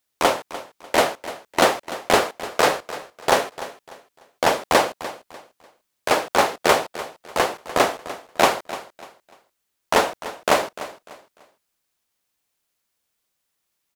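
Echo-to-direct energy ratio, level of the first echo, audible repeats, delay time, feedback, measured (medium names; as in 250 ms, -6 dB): -14.5 dB, -15.0 dB, 2, 297 ms, 30%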